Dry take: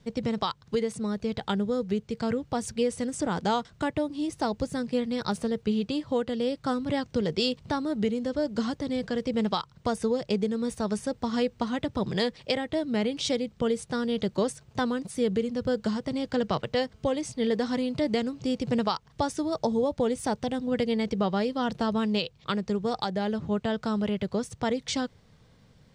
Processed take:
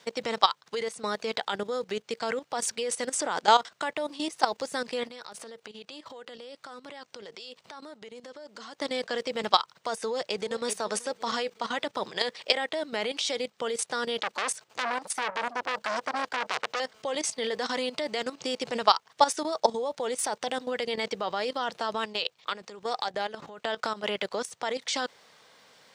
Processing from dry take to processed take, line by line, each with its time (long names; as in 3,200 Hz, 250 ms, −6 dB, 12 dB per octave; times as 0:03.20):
0:05.07–0:08.81: downward compressor 8 to 1, threshold −38 dBFS
0:10.02–0:10.68: delay throw 380 ms, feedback 50%, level −15 dB
0:14.18–0:16.80: saturating transformer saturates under 2,800 Hz
0:22.04–0:24.04: downward compressor 8 to 1, threshold −29 dBFS
whole clip: high-pass filter 680 Hz 12 dB per octave; output level in coarse steps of 14 dB; boost into a limiter +18.5 dB; level −6 dB